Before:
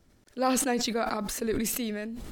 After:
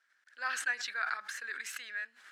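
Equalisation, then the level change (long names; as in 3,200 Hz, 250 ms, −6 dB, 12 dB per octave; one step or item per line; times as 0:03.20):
high-pass with resonance 1,600 Hz, resonance Q 7.1
high-frequency loss of the air 51 metres
−7.5 dB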